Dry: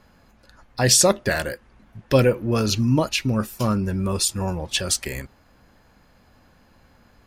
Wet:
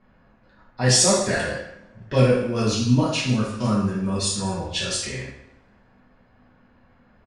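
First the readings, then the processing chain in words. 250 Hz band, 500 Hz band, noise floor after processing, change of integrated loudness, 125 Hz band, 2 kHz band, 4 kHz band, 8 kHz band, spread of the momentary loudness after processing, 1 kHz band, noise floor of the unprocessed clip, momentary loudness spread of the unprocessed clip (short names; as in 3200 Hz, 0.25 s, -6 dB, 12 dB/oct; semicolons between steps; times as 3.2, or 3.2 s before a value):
+0.5 dB, -1.0 dB, -58 dBFS, -0.5 dB, +0.5 dB, -0.5 dB, -0.5 dB, -1.5 dB, 13 LU, -0.5 dB, -57 dBFS, 14 LU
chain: downsampling 22050 Hz; two-slope reverb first 0.77 s, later 2.2 s, from -26 dB, DRR -7 dB; low-pass opened by the level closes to 2200 Hz, open at -9 dBFS; gain -8.5 dB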